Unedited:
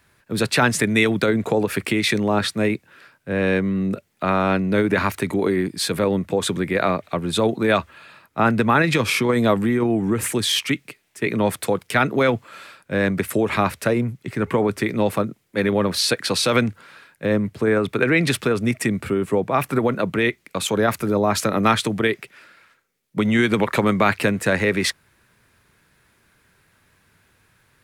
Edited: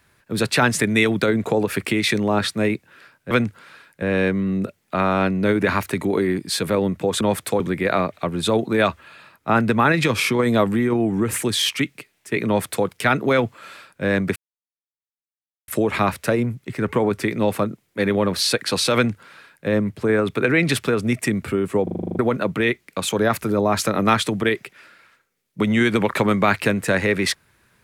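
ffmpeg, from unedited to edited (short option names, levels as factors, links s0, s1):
-filter_complex "[0:a]asplit=15[s0][s1][s2][s3][s4][s5][s6][s7][s8][s9][s10][s11][s12][s13][s14];[s0]atrim=end=3.312[s15];[s1]atrim=start=16.528:end=17.242[s16];[s2]atrim=start=3.308:end=6.502[s17];[s3]atrim=start=11.368:end=11.762[s18];[s4]atrim=start=6.498:end=13.26,asetpts=PTS-STARTPTS,afade=t=out:st=6.758:d=0.004:c=hsin,apad=pad_dur=1.32[s19];[s5]atrim=start=13.26:end=19.452,asetpts=PTS-STARTPTS,afade=t=in:d=0.004:c=hsin[s20];[s6]atrim=start=19.408:end=19.452[s21];[s7]atrim=start=19.408:end=19.452[s22];[s8]atrim=start=19.408:end=19.452[s23];[s9]atrim=start=19.408:end=19.452[s24];[s10]atrim=start=19.408:end=19.452[s25];[s11]atrim=start=19.408:end=19.452[s26];[s12]atrim=start=19.408:end=19.452[s27];[s13]atrim=start=19.408:end=19.452[s28];[s14]atrim=start=19.768[s29];[s15][s16]acrossfade=d=0.004:c1=hsin:c2=hsin[s30];[s30][s17]acrossfade=d=0.004:c1=hsin:c2=hsin[s31];[s31][s18]acrossfade=d=0.004:c1=hsin:c2=hsin[s32];[s19][s20]concat=n=2:v=0:a=1[s33];[s32][s33]acrossfade=d=0.004:c1=hsin:c2=hsin[s34];[s34][s21]acrossfade=d=0.004:c1=hsin:c2=hsin[s35];[s35][s22]acrossfade=d=0.004:c1=hsin:c2=hsin[s36];[s36][s23]acrossfade=d=0.004:c1=hsin:c2=hsin[s37];[s37][s24]acrossfade=d=0.004:c1=hsin:c2=hsin[s38];[s38][s25]acrossfade=d=0.004:c1=hsin:c2=hsin[s39];[s39][s26]acrossfade=d=0.004:c1=hsin:c2=hsin[s40];[s40][s27]acrossfade=d=0.004:c1=hsin:c2=hsin[s41];[s41][s28]acrossfade=d=0.004:c1=hsin:c2=hsin[s42];[s42][s29]acrossfade=d=0.004:c1=hsin:c2=hsin"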